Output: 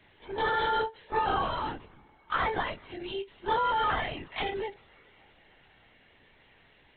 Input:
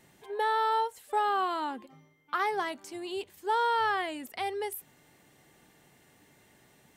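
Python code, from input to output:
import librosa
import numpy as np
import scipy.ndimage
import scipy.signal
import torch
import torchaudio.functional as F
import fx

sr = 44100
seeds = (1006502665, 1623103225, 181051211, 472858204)

y = fx.freq_snap(x, sr, grid_st=2)
y = fx.rev_double_slope(y, sr, seeds[0], early_s=0.43, late_s=4.6, knee_db=-18, drr_db=18.5)
y = fx.lpc_vocoder(y, sr, seeds[1], excitation='whisper', order=16)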